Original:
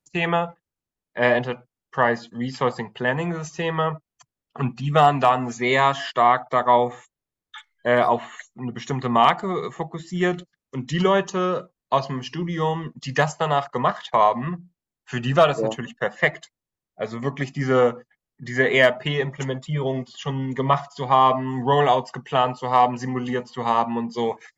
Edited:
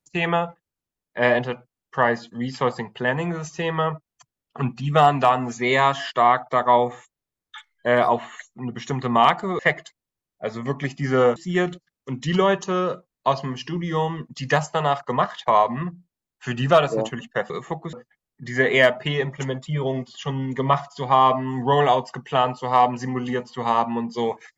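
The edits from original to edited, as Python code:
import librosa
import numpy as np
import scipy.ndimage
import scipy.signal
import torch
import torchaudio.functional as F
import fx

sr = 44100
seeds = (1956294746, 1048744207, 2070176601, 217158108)

y = fx.edit(x, sr, fx.swap(start_s=9.59, length_s=0.43, other_s=16.16, other_length_s=1.77), tone=tone)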